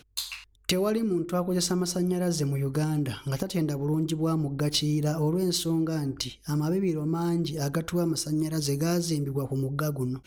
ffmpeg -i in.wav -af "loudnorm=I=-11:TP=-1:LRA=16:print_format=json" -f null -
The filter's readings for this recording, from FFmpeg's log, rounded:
"input_i" : "-28.0",
"input_tp" : "-11.0",
"input_lra" : "1.3",
"input_thresh" : "-38.0",